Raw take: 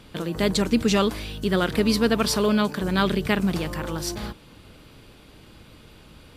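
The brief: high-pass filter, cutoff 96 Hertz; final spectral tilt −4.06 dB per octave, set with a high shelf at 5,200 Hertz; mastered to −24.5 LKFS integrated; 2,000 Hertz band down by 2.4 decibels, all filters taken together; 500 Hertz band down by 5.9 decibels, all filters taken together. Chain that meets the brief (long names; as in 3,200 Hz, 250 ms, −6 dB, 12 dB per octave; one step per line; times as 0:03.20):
high-pass filter 96 Hz
parametric band 500 Hz −7.5 dB
parametric band 2,000 Hz −3.5 dB
high-shelf EQ 5,200 Hz +5.5 dB
level +0.5 dB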